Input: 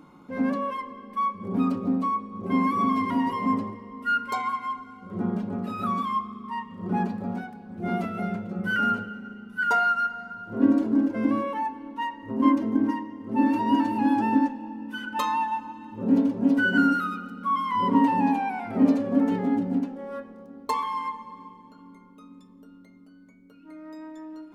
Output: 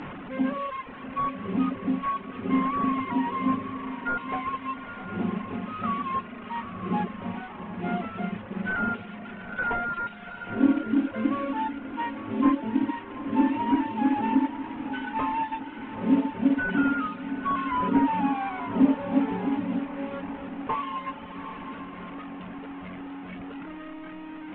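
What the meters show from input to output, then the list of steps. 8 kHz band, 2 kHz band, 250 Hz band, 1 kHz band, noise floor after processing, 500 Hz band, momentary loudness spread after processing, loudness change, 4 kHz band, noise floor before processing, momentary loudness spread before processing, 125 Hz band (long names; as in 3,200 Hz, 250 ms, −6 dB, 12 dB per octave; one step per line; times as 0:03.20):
can't be measured, −3.5 dB, −1.5 dB, −2.5 dB, −41 dBFS, −1.5 dB, 15 LU, −2.5 dB, −3.0 dB, −51 dBFS, 15 LU, −1.5 dB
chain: linear delta modulator 16 kbit/s, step −30.5 dBFS
high-frequency loss of the air 150 metres
reverb reduction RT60 0.95 s
feedback delay with all-pass diffusion 843 ms, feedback 45%, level −10.5 dB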